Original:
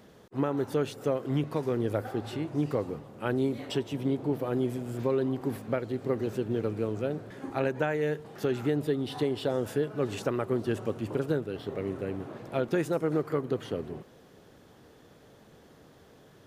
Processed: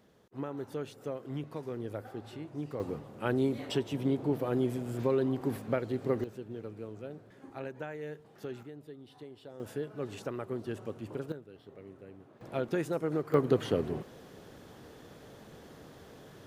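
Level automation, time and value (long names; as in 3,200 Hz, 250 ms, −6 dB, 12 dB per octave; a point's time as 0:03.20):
−9.5 dB
from 0:02.80 −1 dB
from 0:06.24 −12 dB
from 0:08.63 −19.5 dB
from 0:09.60 −8 dB
from 0:11.32 −16.5 dB
from 0:12.41 −4 dB
from 0:13.34 +4 dB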